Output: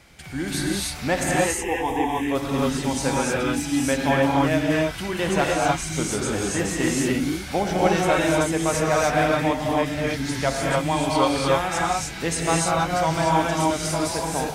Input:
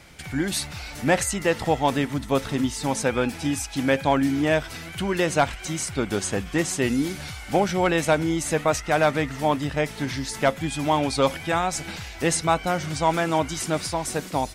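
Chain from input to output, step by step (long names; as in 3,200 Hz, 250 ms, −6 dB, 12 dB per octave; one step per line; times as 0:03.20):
0:01.31–0:02.27: phaser with its sweep stopped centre 890 Hz, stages 8
reverb whose tail is shaped and stops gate 330 ms rising, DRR −4 dB
level −3.5 dB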